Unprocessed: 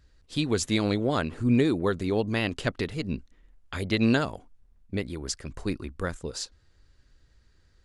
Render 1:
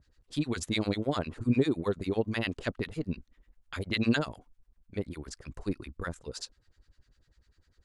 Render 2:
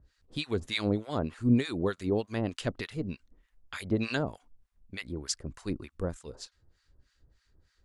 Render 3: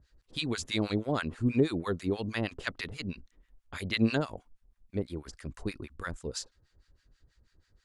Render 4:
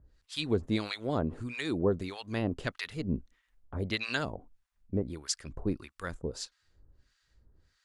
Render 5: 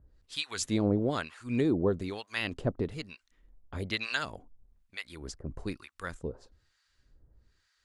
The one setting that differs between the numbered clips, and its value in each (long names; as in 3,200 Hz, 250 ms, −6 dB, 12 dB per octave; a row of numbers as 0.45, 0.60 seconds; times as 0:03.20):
two-band tremolo in antiphase, speed: 10, 3.3, 6.2, 1.6, 1.1 Hertz